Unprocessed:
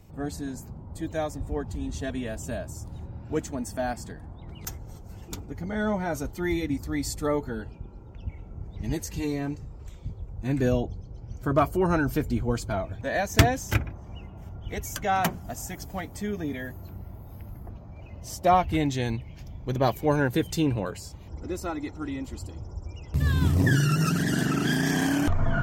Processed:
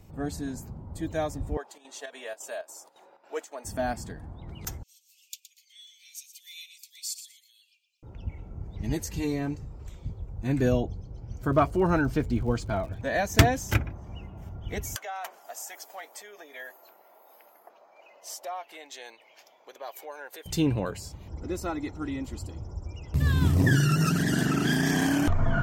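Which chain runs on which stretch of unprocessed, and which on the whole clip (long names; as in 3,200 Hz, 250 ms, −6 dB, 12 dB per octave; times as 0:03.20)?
0:01.57–0:03.65: high-pass filter 490 Hz 24 dB per octave + square-wave tremolo 3.6 Hz, depth 65%, duty 75%
0:04.83–0:08.03: Butterworth high-pass 2,500 Hz 72 dB per octave + repeating echo 118 ms, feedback 18%, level −11.5 dB
0:11.51–0:12.96: high-frequency loss of the air 61 metres + surface crackle 160 per second −42 dBFS
0:14.96–0:20.46: downward compressor, threshold −32 dBFS + high-pass filter 530 Hz 24 dB per octave
whole clip: no processing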